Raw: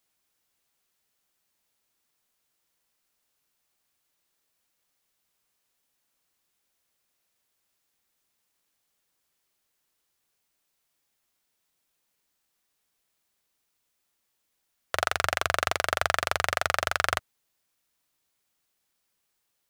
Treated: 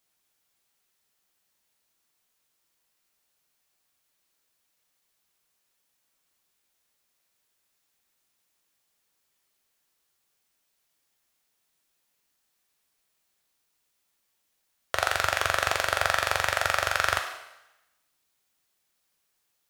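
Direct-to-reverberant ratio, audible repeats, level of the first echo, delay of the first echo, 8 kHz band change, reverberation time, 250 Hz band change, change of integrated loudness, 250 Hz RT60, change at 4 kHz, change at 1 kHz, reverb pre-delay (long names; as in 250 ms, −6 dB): 3.5 dB, no echo audible, no echo audible, no echo audible, +2.0 dB, 0.95 s, −0.5 dB, +1.5 dB, 0.90 s, +2.0 dB, +1.0 dB, 4 ms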